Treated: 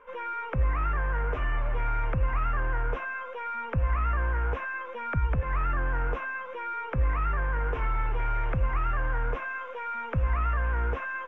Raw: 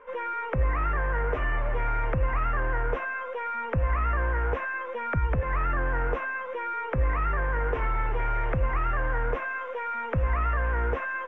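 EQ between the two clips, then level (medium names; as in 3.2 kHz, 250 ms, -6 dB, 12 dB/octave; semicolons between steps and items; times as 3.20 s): peaking EQ 490 Hz -5.5 dB 1.9 oct; peaking EQ 1.9 kHz -6 dB 0.25 oct; 0.0 dB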